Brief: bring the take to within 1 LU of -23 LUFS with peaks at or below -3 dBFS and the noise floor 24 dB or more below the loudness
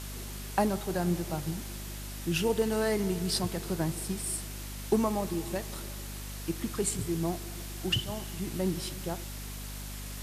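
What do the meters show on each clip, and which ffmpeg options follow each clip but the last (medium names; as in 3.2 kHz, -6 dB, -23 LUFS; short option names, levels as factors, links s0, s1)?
hum 50 Hz; highest harmonic 250 Hz; hum level -39 dBFS; noise floor -40 dBFS; noise floor target -57 dBFS; loudness -32.5 LUFS; peak level -13.5 dBFS; loudness target -23.0 LUFS
-> -af "bandreject=f=50:t=h:w=6,bandreject=f=100:t=h:w=6,bandreject=f=150:t=h:w=6,bandreject=f=200:t=h:w=6,bandreject=f=250:t=h:w=6"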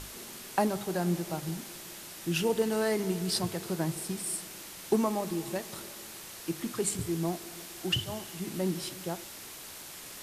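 hum not found; noise floor -45 dBFS; noise floor target -57 dBFS
-> -af "afftdn=nr=12:nf=-45"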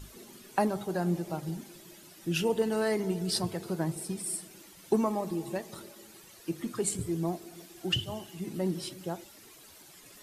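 noise floor -54 dBFS; noise floor target -57 dBFS
-> -af "afftdn=nr=6:nf=-54"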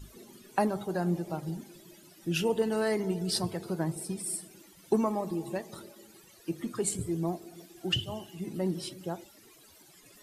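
noise floor -57 dBFS; loudness -32.5 LUFS; peak level -14.5 dBFS; loudness target -23.0 LUFS
-> -af "volume=2.99"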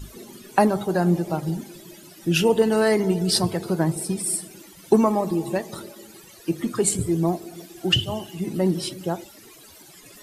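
loudness -23.0 LUFS; peak level -5.0 dBFS; noise floor -48 dBFS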